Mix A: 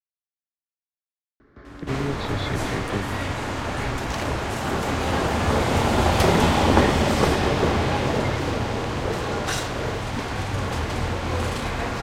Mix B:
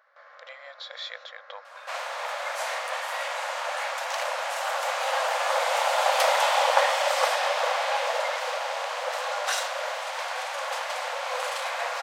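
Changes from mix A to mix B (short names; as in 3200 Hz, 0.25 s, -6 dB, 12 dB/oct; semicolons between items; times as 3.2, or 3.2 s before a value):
speech: entry -1.40 s; master: add brick-wall FIR high-pass 490 Hz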